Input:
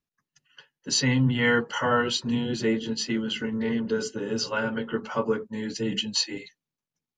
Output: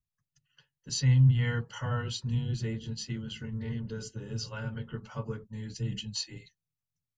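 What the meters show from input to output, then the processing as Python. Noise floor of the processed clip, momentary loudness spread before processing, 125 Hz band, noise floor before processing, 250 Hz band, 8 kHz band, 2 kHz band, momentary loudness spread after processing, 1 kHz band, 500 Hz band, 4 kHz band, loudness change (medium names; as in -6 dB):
under -85 dBFS, 8 LU, +4.5 dB, under -85 dBFS, -10.5 dB, -8.0 dB, -13.5 dB, 16 LU, -14.0 dB, -15.0 dB, -10.0 dB, -5.5 dB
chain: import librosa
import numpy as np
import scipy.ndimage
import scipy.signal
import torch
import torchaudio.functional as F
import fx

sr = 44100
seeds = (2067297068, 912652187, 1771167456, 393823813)

y = fx.curve_eq(x, sr, hz=(120.0, 260.0, 1900.0, 6900.0), db=(0, -22, -20, -14))
y = y * librosa.db_to_amplitude(6.5)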